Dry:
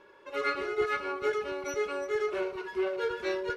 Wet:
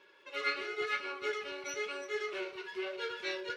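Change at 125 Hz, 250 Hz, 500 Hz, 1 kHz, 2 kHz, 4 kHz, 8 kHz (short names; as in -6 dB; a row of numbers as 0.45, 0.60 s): n/a, -9.0 dB, -8.5 dB, -6.5 dB, -1.5 dB, +3.0 dB, 0.0 dB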